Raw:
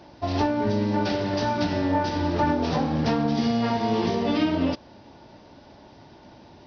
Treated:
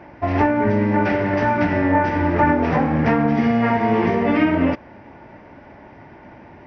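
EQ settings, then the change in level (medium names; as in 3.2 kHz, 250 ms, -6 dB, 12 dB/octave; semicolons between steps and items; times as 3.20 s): resonant high shelf 2.9 kHz -11.5 dB, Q 3; +5.5 dB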